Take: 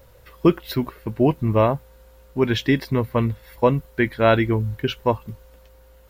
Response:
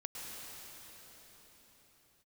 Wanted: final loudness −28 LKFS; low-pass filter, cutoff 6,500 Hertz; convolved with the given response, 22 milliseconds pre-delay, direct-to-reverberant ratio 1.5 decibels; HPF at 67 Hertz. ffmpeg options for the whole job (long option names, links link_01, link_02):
-filter_complex "[0:a]highpass=67,lowpass=6500,asplit=2[link_01][link_02];[1:a]atrim=start_sample=2205,adelay=22[link_03];[link_02][link_03]afir=irnorm=-1:irlink=0,volume=-1.5dB[link_04];[link_01][link_04]amix=inputs=2:normalize=0,volume=-8dB"